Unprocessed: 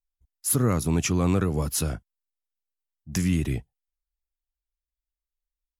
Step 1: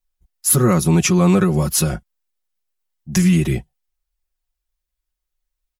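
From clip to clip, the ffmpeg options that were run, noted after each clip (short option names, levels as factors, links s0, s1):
-af "aecho=1:1:5.5:0.96,volume=2"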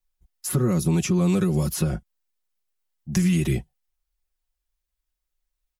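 -filter_complex "[0:a]acrossover=split=510|2800[s0][s1][s2];[s0]acompressor=threshold=0.141:ratio=4[s3];[s1]acompressor=threshold=0.0141:ratio=4[s4];[s2]acompressor=threshold=0.0316:ratio=4[s5];[s3][s4][s5]amix=inputs=3:normalize=0,volume=0.841"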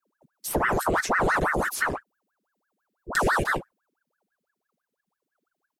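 -af "aeval=exprs='val(0)*sin(2*PI*940*n/s+940*0.8/6*sin(2*PI*6*n/s))':c=same"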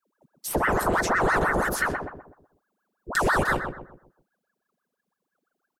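-filter_complex "[0:a]asplit=2[s0][s1];[s1]adelay=126,lowpass=f=1200:p=1,volume=0.596,asplit=2[s2][s3];[s3]adelay=126,lowpass=f=1200:p=1,volume=0.42,asplit=2[s4][s5];[s5]adelay=126,lowpass=f=1200:p=1,volume=0.42,asplit=2[s6][s7];[s7]adelay=126,lowpass=f=1200:p=1,volume=0.42,asplit=2[s8][s9];[s9]adelay=126,lowpass=f=1200:p=1,volume=0.42[s10];[s0][s2][s4][s6][s8][s10]amix=inputs=6:normalize=0"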